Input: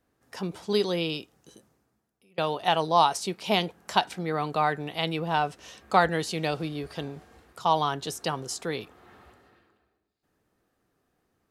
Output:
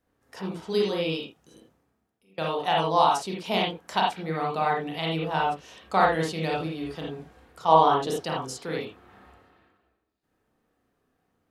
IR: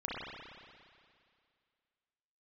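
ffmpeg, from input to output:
-filter_complex "[0:a]asettb=1/sr,asplit=3[a][b][c];[a]atrim=end=7.684[d];[b]atrim=start=7.68:end=8.2,asetpts=PTS-STARTPTS,afade=t=in:d=0.004:c=qsin,afade=t=out:st=0.516:d=0.004:c=qsin,equalizer=f=550:t=o:w=2.2:g=8.5[e];[c]atrim=start=8.196[f];[d][e]acrossfade=d=0.004:c1=hsin:c2=qsin[g];[g][f]acrossfade=d=0.004:c1=qsin:c2=hsin[h];[1:a]atrim=start_sample=2205,atrim=end_sample=4410[i];[h][i]afir=irnorm=-1:irlink=0,volume=-1dB"

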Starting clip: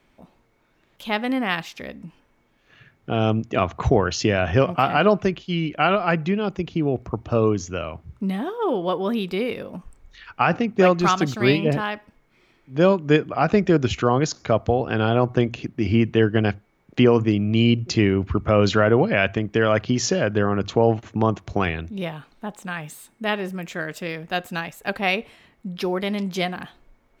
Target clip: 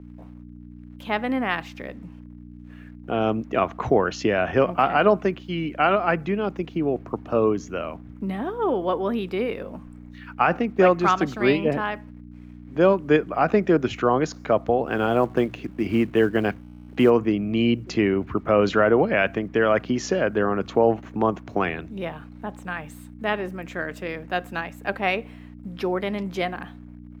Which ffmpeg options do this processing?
-filter_complex "[0:a]highshelf=f=3.9k:g=6,acrusher=bits=8:mix=0:aa=0.5,aeval=exprs='val(0)+0.0251*(sin(2*PI*60*n/s)+sin(2*PI*2*60*n/s)/2+sin(2*PI*3*60*n/s)/3+sin(2*PI*4*60*n/s)/4+sin(2*PI*5*60*n/s)/5)':c=same,asettb=1/sr,asplit=3[a][b][c];[a]atrim=end=14.864[d];[b]atrim=start=14.86:end=17.1,asetpts=PTS-STARTPTS,afade=t=in:d=0.004:c=qsin,afade=t=out:st=2.236:d=0.004:c=qsin,acrusher=bits=6:mode=log:mix=0:aa=0.000001[e];[c]atrim=start=17.096[f];[d][e]acrossfade=d=0.004:c1=hsin:c2=qsin[g];[g][f]acrossfade=d=0.004:c1=qsin:c2=hsin,acrossover=split=190 2400:gain=0.224 1 0.2[h][i][j];[h][i][j]amix=inputs=3:normalize=0"

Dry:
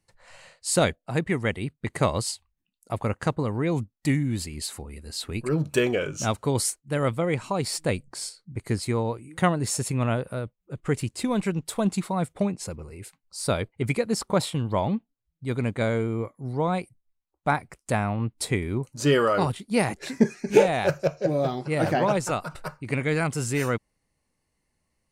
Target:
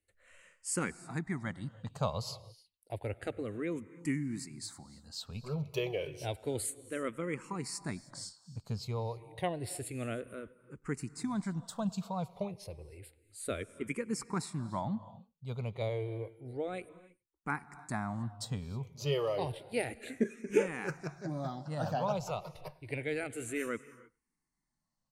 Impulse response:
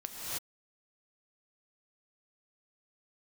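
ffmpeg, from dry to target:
-filter_complex "[0:a]asplit=2[a][b];[b]adelay=100,highpass=300,lowpass=3.4k,asoftclip=type=hard:threshold=-14dB,volume=-25dB[c];[a][c]amix=inputs=2:normalize=0,asplit=2[d][e];[1:a]atrim=start_sample=2205[f];[e][f]afir=irnorm=-1:irlink=0,volume=-19dB[g];[d][g]amix=inputs=2:normalize=0,asplit=2[h][i];[i]afreqshift=-0.3[j];[h][j]amix=inputs=2:normalize=1,volume=-9dB"

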